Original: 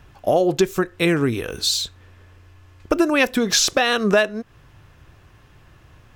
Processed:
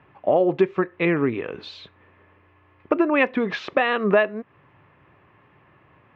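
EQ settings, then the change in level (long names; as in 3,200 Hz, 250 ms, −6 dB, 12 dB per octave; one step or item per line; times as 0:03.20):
loudspeaker in its box 220–2,200 Hz, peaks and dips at 230 Hz −4 dB, 330 Hz −4 dB, 480 Hz −4 dB, 710 Hz −5 dB, 1,500 Hz −9 dB
+3.0 dB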